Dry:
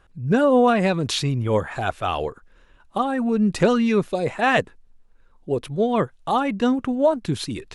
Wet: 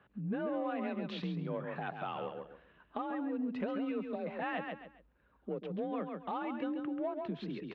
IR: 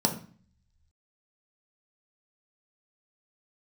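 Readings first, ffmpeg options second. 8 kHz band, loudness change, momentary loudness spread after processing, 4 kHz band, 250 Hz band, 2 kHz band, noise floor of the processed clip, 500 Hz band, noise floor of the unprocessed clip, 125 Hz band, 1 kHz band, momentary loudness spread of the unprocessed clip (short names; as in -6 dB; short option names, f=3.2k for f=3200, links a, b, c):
under -40 dB, -17.0 dB, 8 LU, -20.5 dB, -15.0 dB, -17.5 dB, -69 dBFS, -17.5 dB, -55 dBFS, -18.0 dB, -16.5 dB, 10 LU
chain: -filter_complex "[0:a]asplit=2[a][b];[b]volume=22.5dB,asoftclip=hard,volume=-22.5dB,volume=-7dB[c];[a][c]amix=inputs=2:normalize=0,lowpass=f=3.1k:w=0.5412,lowpass=f=3.1k:w=1.3066,afreqshift=41,lowshelf=f=120:t=q:w=1.5:g=-13,asplit=2[d][e];[e]aecho=0:1:136|272|408:0.447|0.0804|0.0145[f];[d][f]amix=inputs=2:normalize=0,acompressor=threshold=-31dB:ratio=2.5,volume=-9dB"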